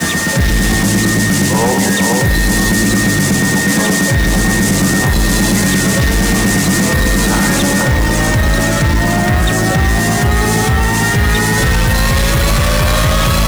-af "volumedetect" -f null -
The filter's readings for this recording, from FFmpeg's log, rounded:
mean_volume: -11.8 dB
max_volume: -7.4 dB